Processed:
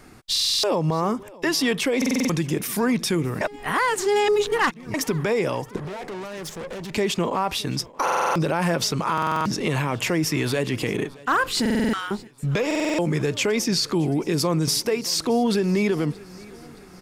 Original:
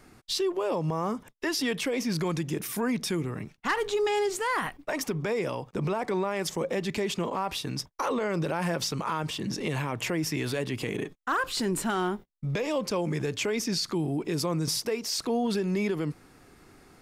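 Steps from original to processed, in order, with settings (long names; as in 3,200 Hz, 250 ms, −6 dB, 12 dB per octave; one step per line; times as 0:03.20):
0:05.76–0:06.94: tube saturation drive 38 dB, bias 0.75
0:11.65–0:12.11: high-pass filter 1,300 Hz 24 dB per octave
repeating echo 621 ms, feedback 53%, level −22 dB
0:03.41–0:04.94: reverse
buffer that repeats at 0:00.31/0:01.97/0:08.03/0:09.13/0:11.61/0:12.66, samples 2,048, times 6
level +6.5 dB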